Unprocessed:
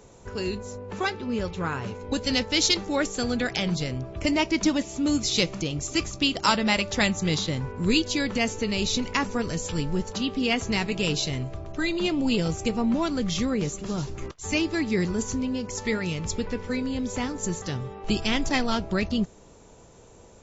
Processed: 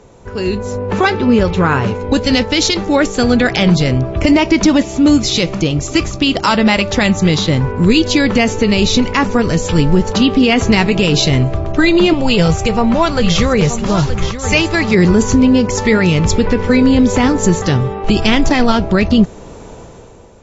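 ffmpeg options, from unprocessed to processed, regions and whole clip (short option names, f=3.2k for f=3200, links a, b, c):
-filter_complex "[0:a]asettb=1/sr,asplit=3[a][b][c];[a]atrim=end=12.134[d];[b]atrim=start=12.13:end=14.95,asetpts=PTS-STARTPTS,afade=t=in:d=0.004:c=qsin,afade=t=out:st=2.816:d=0.004:c=qsin,equalizer=f=280:w=1.7:g=-12.5,aecho=1:1:924:0.266,atrim=end_sample=124362[e];[c]atrim=start=14.946[f];[d][e]acrossfade=d=0.004:c1=hsin:c2=qsin[g];[g][f]acrossfade=d=0.004:c1=qsin:c2=hsin,dynaudnorm=f=140:g=9:m=11.5dB,aemphasis=mode=reproduction:type=50kf,alimiter=level_in=9.5dB:limit=-1dB:release=50:level=0:latency=1,volume=-1dB"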